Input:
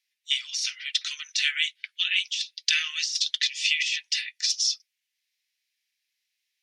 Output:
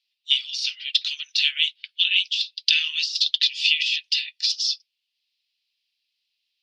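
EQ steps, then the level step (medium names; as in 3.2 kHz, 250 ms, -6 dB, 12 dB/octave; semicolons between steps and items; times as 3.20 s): high-order bell 3.6 kHz +15.5 dB 1.2 oct; -9.5 dB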